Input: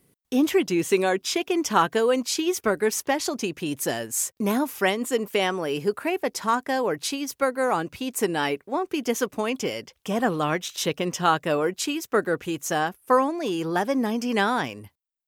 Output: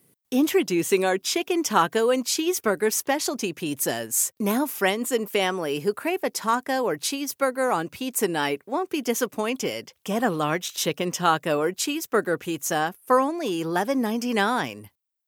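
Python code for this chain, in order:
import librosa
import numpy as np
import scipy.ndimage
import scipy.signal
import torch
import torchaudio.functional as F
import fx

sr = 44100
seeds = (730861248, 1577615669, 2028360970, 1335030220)

y = scipy.signal.sosfilt(scipy.signal.butter(2, 93.0, 'highpass', fs=sr, output='sos'), x)
y = fx.high_shelf(y, sr, hz=9400.0, db=7.5)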